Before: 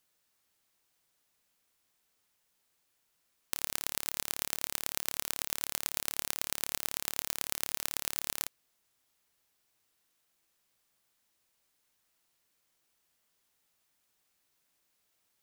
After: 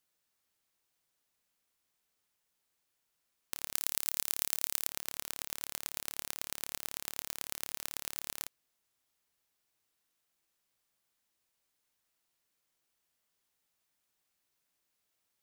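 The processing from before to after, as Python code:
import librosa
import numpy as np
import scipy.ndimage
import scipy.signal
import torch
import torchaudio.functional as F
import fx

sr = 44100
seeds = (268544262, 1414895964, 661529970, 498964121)

y = fx.high_shelf(x, sr, hz=4100.0, db=8.0, at=(3.75, 4.87))
y = y * 10.0 ** (-5.0 / 20.0)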